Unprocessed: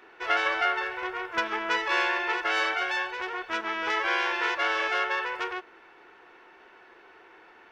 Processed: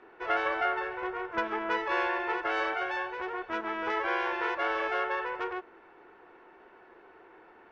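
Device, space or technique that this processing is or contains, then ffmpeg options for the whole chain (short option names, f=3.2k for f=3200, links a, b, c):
through cloth: -af "lowpass=7.7k,highshelf=f=2k:g=-17,volume=2dB"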